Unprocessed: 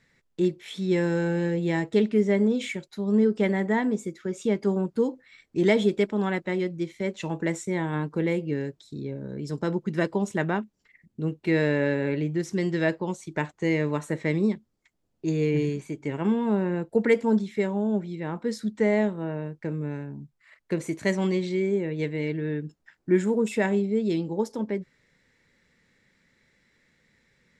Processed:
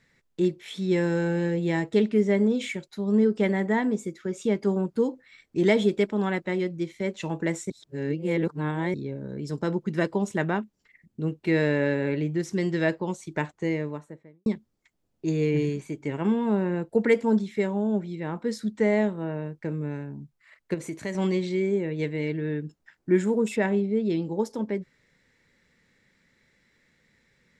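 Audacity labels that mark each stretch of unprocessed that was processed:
7.700000	8.940000	reverse
13.340000	14.460000	studio fade out
20.740000	21.150000	compression 2:1, threshold -32 dBFS
23.560000	24.220000	distance through air 110 m

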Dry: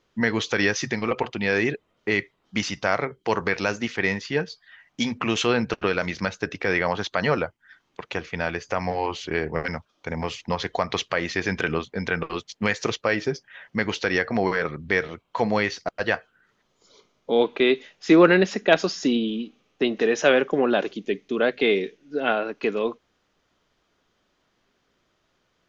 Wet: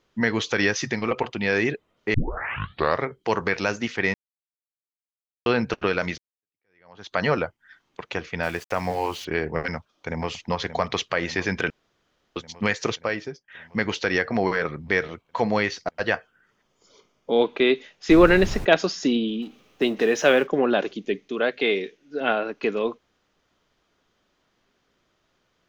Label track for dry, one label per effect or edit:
2.140000	2.140000	tape start 0.92 s
4.140000	5.460000	mute
6.180000	7.150000	fade in exponential
8.430000	9.250000	small samples zeroed under -39.5 dBFS
9.760000	10.290000	echo throw 580 ms, feedback 70%, level -10.5 dB
11.700000	12.360000	room tone
12.870000	13.480000	fade out, to -22.5 dB
16.110000	17.320000	band-stop 4 kHz, Q 7.4
18.090000	18.640000	added noise brown -26 dBFS
19.420000	20.470000	companding laws mixed up coded by mu
21.280000	22.210000	bass shelf 330 Hz -6.5 dB

